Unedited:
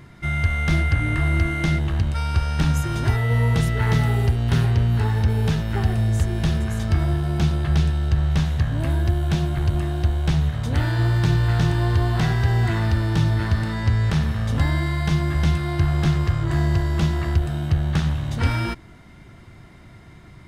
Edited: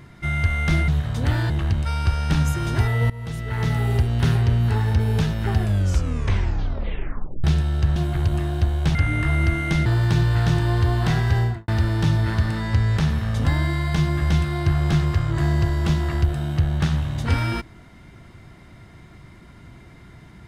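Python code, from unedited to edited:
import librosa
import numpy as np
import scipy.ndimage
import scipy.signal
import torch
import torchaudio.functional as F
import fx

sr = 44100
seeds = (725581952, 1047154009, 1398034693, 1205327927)

y = fx.studio_fade_out(x, sr, start_s=12.5, length_s=0.31)
y = fx.edit(y, sr, fx.swap(start_s=0.88, length_s=0.91, other_s=10.37, other_length_s=0.62),
    fx.fade_in_from(start_s=3.39, length_s=0.89, floor_db=-20.0),
    fx.tape_stop(start_s=5.87, length_s=1.86),
    fx.cut(start_s=8.25, length_s=1.13), tone=tone)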